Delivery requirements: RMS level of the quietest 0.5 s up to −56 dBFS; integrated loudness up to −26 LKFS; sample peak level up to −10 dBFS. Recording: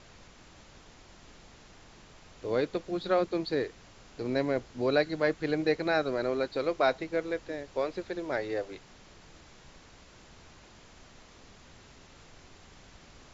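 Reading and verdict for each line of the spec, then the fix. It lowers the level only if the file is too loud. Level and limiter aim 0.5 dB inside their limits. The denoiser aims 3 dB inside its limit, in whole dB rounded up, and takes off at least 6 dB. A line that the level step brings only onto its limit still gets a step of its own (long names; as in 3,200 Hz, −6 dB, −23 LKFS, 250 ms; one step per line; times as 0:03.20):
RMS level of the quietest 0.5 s −54 dBFS: out of spec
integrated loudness −31.0 LKFS: in spec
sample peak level −13.0 dBFS: in spec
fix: broadband denoise 6 dB, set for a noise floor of −54 dBFS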